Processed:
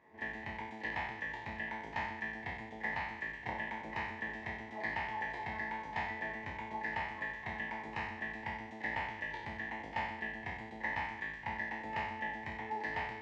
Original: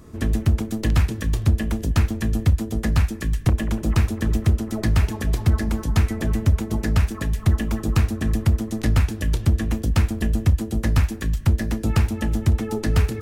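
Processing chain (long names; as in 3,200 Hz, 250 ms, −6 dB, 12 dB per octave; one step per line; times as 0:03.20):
peak hold with a decay on every bin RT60 0.88 s
pair of resonant band-passes 1,300 Hz, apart 1.1 octaves
high-frequency loss of the air 120 metres
backwards echo 32 ms −12.5 dB
level −1 dB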